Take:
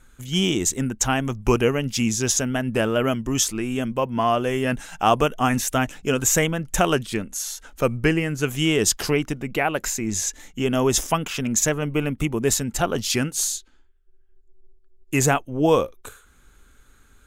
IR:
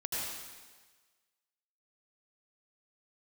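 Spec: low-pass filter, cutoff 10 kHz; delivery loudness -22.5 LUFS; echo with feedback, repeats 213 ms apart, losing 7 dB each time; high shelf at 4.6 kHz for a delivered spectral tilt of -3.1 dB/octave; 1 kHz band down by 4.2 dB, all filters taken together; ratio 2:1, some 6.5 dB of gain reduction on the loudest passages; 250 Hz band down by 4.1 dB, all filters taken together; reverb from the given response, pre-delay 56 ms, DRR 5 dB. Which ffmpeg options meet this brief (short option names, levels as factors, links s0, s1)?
-filter_complex "[0:a]lowpass=10000,equalizer=f=250:t=o:g=-5,equalizer=f=1000:t=o:g=-6,highshelf=f=4600:g=5.5,acompressor=threshold=0.0501:ratio=2,aecho=1:1:213|426|639|852|1065:0.447|0.201|0.0905|0.0407|0.0183,asplit=2[s0][s1];[1:a]atrim=start_sample=2205,adelay=56[s2];[s1][s2]afir=irnorm=-1:irlink=0,volume=0.335[s3];[s0][s3]amix=inputs=2:normalize=0,volume=1.33"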